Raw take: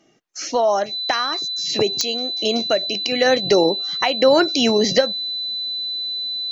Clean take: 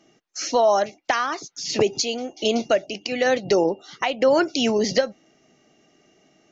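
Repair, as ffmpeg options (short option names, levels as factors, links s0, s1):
-af "adeclick=t=4,bandreject=f=4000:w=30,asetnsamples=n=441:p=0,asendcmd='2.81 volume volume -3.5dB',volume=1"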